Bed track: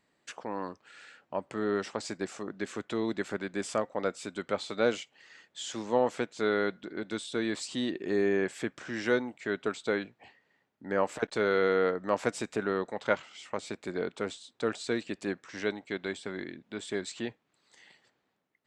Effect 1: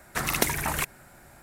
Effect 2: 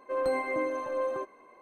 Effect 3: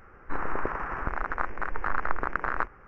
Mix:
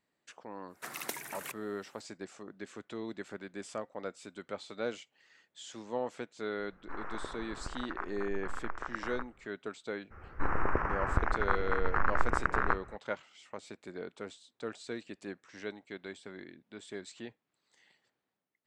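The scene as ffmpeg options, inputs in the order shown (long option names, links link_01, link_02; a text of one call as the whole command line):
ffmpeg -i bed.wav -i cue0.wav -i cue1.wav -i cue2.wav -filter_complex "[3:a]asplit=2[link_01][link_02];[0:a]volume=-9dB[link_03];[1:a]highpass=280[link_04];[link_01]acrossover=split=540[link_05][link_06];[link_05]aeval=exprs='val(0)*(1-0.5/2+0.5/2*cos(2*PI*1.1*n/s))':channel_layout=same[link_07];[link_06]aeval=exprs='val(0)*(1-0.5/2-0.5/2*cos(2*PI*1.1*n/s))':channel_layout=same[link_08];[link_07][link_08]amix=inputs=2:normalize=0[link_09];[link_02]equalizer=frequency=80:width_type=o:width=1.7:gain=8.5[link_10];[link_04]atrim=end=1.42,asetpts=PTS-STARTPTS,volume=-13.5dB,afade=type=in:duration=0.1,afade=type=out:start_time=1.32:duration=0.1,adelay=670[link_11];[link_09]atrim=end=2.87,asetpts=PTS-STARTPTS,volume=-9dB,afade=type=in:duration=0.004:curve=hsin,afade=type=out:start_time=2.866:duration=0.004:curve=hsin,adelay=6590[link_12];[link_10]atrim=end=2.87,asetpts=PTS-STARTPTS,volume=-1dB,afade=type=in:duration=0.02,afade=type=out:start_time=2.85:duration=0.02,adelay=445410S[link_13];[link_03][link_11][link_12][link_13]amix=inputs=4:normalize=0" out.wav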